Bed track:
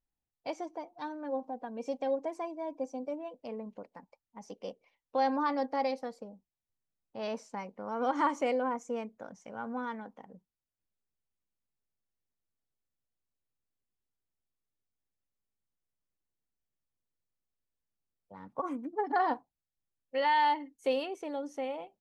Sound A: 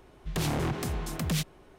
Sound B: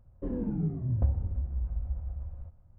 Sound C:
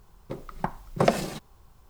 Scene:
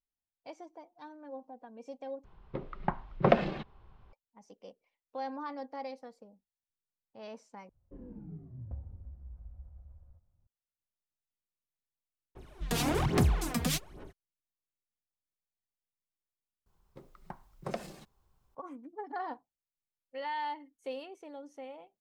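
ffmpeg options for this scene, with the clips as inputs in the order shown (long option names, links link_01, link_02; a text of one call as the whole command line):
ffmpeg -i bed.wav -i cue0.wav -i cue1.wav -i cue2.wav -filter_complex "[3:a]asplit=2[link_01][link_02];[0:a]volume=-9.5dB[link_03];[link_01]lowpass=frequency=3300:width=0.5412,lowpass=frequency=3300:width=1.3066[link_04];[1:a]aphaser=in_gain=1:out_gain=1:delay=4.3:decay=0.72:speed=1.2:type=sinusoidal[link_05];[link_03]asplit=4[link_06][link_07][link_08][link_09];[link_06]atrim=end=2.244[link_10];[link_04]atrim=end=1.89,asetpts=PTS-STARTPTS,volume=-2dB[link_11];[link_07]atrim=start=4.126:end=7.694[link_12];[2:a]atrim=end=2.78,asetpts=PTS-STARTPTS,volume=-15.5dB[link_13];[link_08]atrim=start=10.466:end=16.664[link_14];[link_02]atrim=end=1.89,asetpts=PTS-STARTPTS,volume=-16dB[link_15];[link_09]atrim=start=18.546[link_16];[link_05]atrim=end=1.78,asetpts=PTS-STARTPTS,volume=-2dB,afade=type=in:duration=0.02,afade=type=out:start_time=1.76:duration=0.02,adelay=12350[link_17];[link_10][link_11]acrossfade=duration=0.004:curve1=hsin:curve2=hsin[link_18];[link_18][link_12]acrossfade=duration=0.004:curve1=hsin:curve2=hsin[link_19];[link_19][link_13]acrossfade=duration=0.004:curve1=hsin:curve2=hsin[link_20];[link_20][link_14]acrossfade=duration=0.004:curve1=hsin:curve2=hsin[link_21];[link_21][link_15]acrossfade=duration=0.004:curve1=hsin:curve2=hsin[link_22];[link_22][link_16]acrossfade=duration=0.004:curve1=hsin:curve2=hsin[link_23];[link_23][link_17]amix=inputs=2:normalize=0" out.wav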